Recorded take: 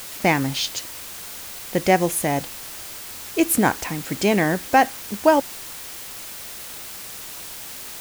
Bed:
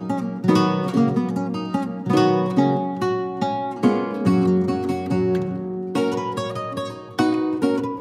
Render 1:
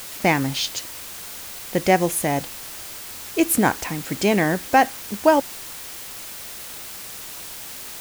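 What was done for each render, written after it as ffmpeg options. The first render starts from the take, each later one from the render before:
ffmpeg -i in.wav -af anull out.wav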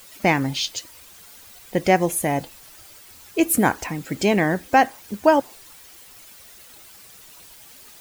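ffmpeg -i in.wav -af "afftdn=noise_reduction=12:noise_floor=-36" out.wav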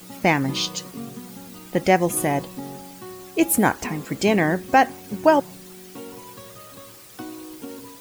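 ffmpeg -i in.wav -i bed.wav -filter_complex "[1:a]volume=-17dB[link_01];[0:a][link_01]amix=inputs=2:normalize=0" out.wav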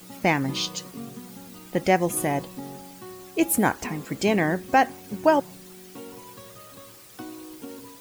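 ffmpeg -i in.wav -af "volume=-3dB" out.wav

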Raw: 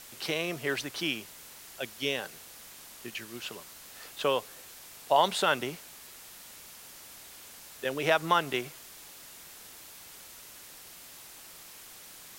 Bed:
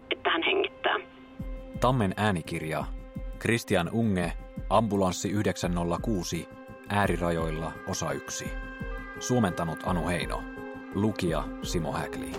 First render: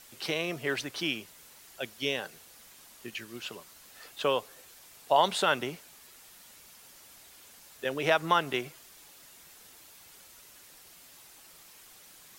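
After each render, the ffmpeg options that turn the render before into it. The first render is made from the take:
ffmpeg -i in.wav -af "afftdn=noise_reduction=6:noise_floor=-50" out.wav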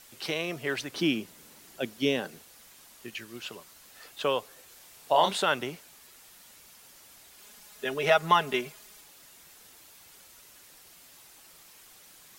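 ffmpeg -i in.wav -filter_complex "[0:a]asettb=1/sr,asplit=3[link_01][link_02][link_03];[link_01]atrim=end=0.924[link_04];[link_02]atrim=start=0.92:end=2.42,asetpts=PTS-STARTPTS,afade=type=in:duration=0.004:curve=qsin,afade=type=out:start_time=1.496:duration=0.004:curve=qsin,equalizer=frequency=240:width_type=o:width=1.9:gain=11[link_05];[link_03]atrim=start=2.416[link_06];[link_04][link_05]acrossfade=duration=0.004:curve1=hsin:curve2=qsin[link_07];[link_07][link_06]acrossfade=duration=0.004:curve1=qsin:curve2=hsin,asettb=1/sr,asplit=3[link_08][link_09][link_10];[link_08]atrim=end=4.684[link_11];[link_09]atrim=start=4.68:end=5.37,asetpts=PTS-STARTPTS,afade=type=in:duration=0.004:curve=qsin,afade=type=out:start_time=0.686:duration=0.004:curve=qsin,asplit=2[link_12][link_13];[link_13]adelay=31,volume=-6dB[link_14];[link_12][link_14]amix=inputs=2:normalize=0,atrim=end_sample=30429[link_15];[link_10]atrim=start=5.366[link_16];[link_11][link_15]acrossfade=duration=0.004:curve1=hsin:curve2=qsin[link_17];[link_17][link_16]acrossfade=duration=0.004:curve1=qsin:curve2=hsin,asettb=1/sr,asplit=3[link_18][link_19][link_20];[link_18]atrim=end=7.384[link_21];[link_19]atrim=start=7.38:end=9.01,asetpts=PTS-STARTPTS,afade=type=in:duration=0.004:curve=qsin,afade=type=out:start_time=1.626:duration=0.004:curve=qsin,aecho=1:1:4.8:0.73,atrim=end_sample=71883[link_22];[link_20]atrim=start=9.006[link_23];[link_21][link_22]acrossfade=duration=0.004:curve1=hsin:curve2=qsin[link_24];[link_24][link_23]acrossfade=duration=0.004:curve1=qsin:curve2=hsin" out.wav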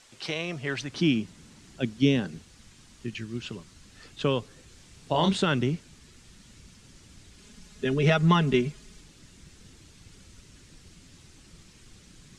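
ffmpeg -i in.wav -af "lowpass=frequency=8200:width=0.5412,lowpass=frequency=8200:width=1.3066,asubboost=boost=12:cutoff=210" out.wav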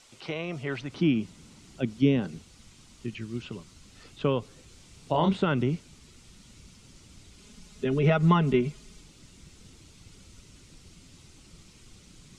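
ffmpeg -i in.wav -filter_complex "[0:a]acrossover=split=2600[link_01][link_02];[link_02]acompressor=threshold=-49dB:ratio=4:attack=1:release=60[link_03];[link_01][link_03]amix=inputs=2:normalize=0,equalizer=frequency=1700:width_type=o:width=0.21:gain=-8.5" out.wav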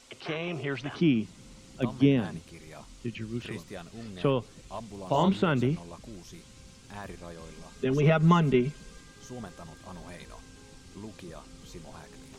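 ffmpeg -i in.wav -i bed.wav -filter_complex "[1:a]volume=-16.5dB[link_01];[0:a][link_01]amix=inputs=2:normalize=0" out.wav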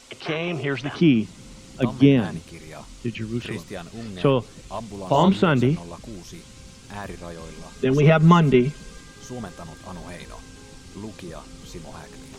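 ffmpeg -i in.wav -af "volume=7dB" out.wav

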